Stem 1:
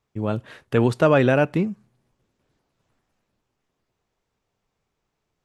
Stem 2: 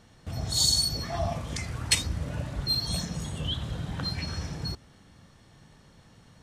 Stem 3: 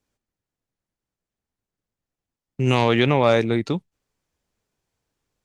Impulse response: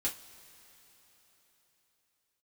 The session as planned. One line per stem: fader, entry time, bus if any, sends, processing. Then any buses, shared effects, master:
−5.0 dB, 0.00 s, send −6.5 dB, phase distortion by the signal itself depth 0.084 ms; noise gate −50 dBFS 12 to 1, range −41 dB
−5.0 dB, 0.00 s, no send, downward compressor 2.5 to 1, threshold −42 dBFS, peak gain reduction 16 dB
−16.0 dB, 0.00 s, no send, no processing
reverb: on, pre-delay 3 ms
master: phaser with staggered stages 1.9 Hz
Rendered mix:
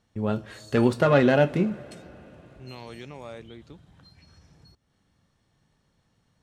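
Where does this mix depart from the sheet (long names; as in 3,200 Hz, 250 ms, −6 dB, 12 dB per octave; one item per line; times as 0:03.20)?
stem 2 −5.0 dB → −13.5 dB
stem 3 −16.0 dB → −23.5 dB
master: missing phaser with staggered stages 1.9 Hz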